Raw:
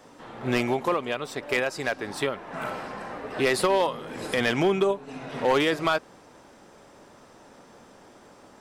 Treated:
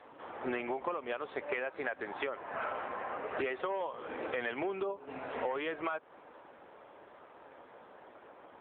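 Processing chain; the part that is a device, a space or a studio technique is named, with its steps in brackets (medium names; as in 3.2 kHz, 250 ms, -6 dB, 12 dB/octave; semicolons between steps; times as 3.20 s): voicemail (band-pass 390–2600 Hz; compression 10:1, threshold -31 dBFS, peak gain reduction 13 dB; AMR-NB 7.95 kbps 8 kHz)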